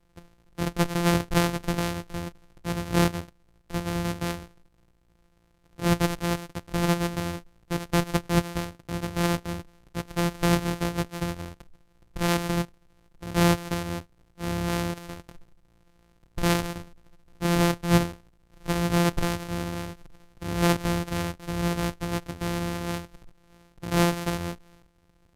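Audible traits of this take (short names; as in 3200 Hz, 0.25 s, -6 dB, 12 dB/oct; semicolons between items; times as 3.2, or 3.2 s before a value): a buzz of ramps at a fixed pitch in blocks of 256 samples; SBC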